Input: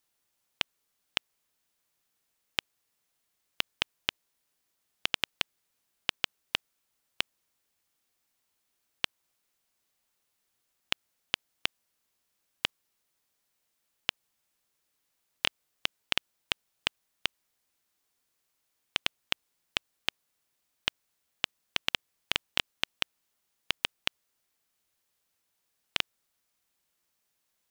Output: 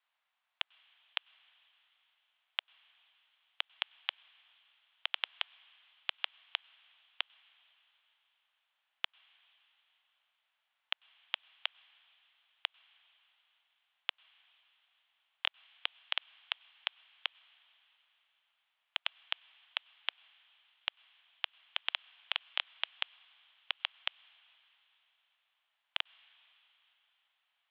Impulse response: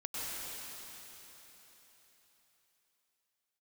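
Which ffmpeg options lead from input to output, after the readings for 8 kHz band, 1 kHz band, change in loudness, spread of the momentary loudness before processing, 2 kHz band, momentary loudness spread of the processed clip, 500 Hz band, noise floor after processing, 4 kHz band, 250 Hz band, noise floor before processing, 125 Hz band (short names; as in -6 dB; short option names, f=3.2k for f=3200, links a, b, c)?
under -30 dB, -4.5 dB, -5.5 dB, 5 LU, -5.5 dB, 5 LU, -13.0 dB, -83 dBFS, -5.0 dB, under -40 dB, -79 dBFS, under -40 dB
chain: -filter_complex "[0:a]alimiter=limit=-11dB:level=0:latency=1:release=11,asplit=2[a][b];[1:a]atrim=start_sample=2205,lowshelf=f=460:g=-7.5[c];[b][c]afir=irnorm=-1:irlink=0,volume=-24.5dB[d];[a][d]amix=inputs=2:normalize=0,highpass=f=510:t=q:w=0.5412,highpass=f=510:t=q:w=1.307,lowpass=f=3.3k:t=q:w=0.5176,lowpass=f=3.3k:t=q:w=0.7071,lowpass=f=3.3k:t=q:w=1.932,afreqshift=180,volume=2dB"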